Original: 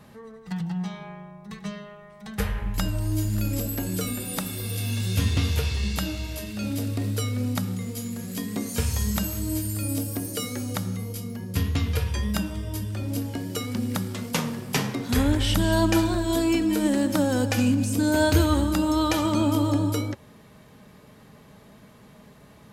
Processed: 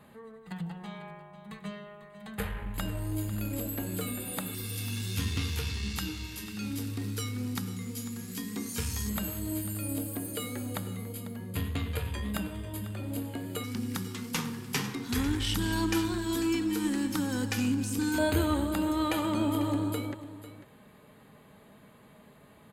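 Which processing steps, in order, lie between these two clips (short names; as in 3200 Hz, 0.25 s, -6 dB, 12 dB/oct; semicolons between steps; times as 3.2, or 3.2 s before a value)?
in parallel at -3.5 dB: one-sided clip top -28.5 dBFS; on the sum: low shelf 160 Hz -5 dB; notches 60/120/180 Hz; on a send: echo 0.496 s -14.5 dB; on the sum: LFO notch square 0.11 Hz 610–5600 Hz; gain -8 dB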